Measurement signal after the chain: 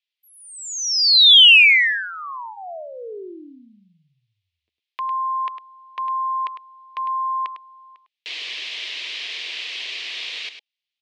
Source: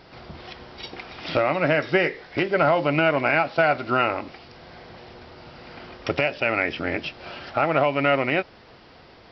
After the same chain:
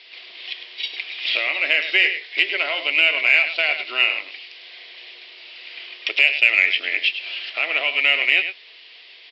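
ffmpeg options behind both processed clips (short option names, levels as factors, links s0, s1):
-af "highpass=f=420:w=0.5412,highpass=f=420:w=1.3066,equalizer=f=550:t=q:w=4:g=-7,equalizer=f=830:t=q:w=4:g=-7,equalizer=f=1400:t=q:w=4:g=-3,lowpass=f=3400:w=0.5412,lowpass=f=3400:w=1.3066,bandreject=f=830:w=24,aecho=1:1:103:0.316,aexciter=amount=14.3:drive=3.3:freq=2100,volume=0.501"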